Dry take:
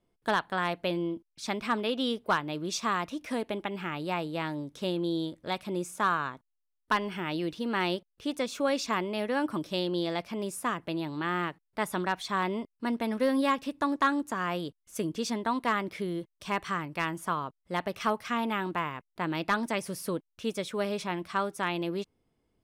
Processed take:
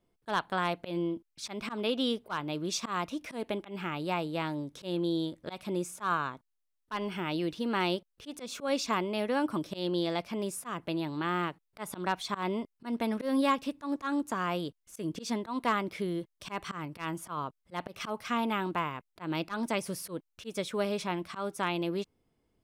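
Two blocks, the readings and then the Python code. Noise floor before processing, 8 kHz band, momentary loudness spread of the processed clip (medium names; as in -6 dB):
-80 dBFS, -0.5 dB, 9 LU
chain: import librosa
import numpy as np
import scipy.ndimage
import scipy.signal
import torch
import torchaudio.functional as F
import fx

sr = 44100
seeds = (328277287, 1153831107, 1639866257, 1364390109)

y = fx.dynamic_eq(x, sr, hz=1800.0, q=5.6, threshold_db=-49.0, ratio=4.0, max_db=-6)
y = fx.auto_swell(y, sr, attack_ms=123.0)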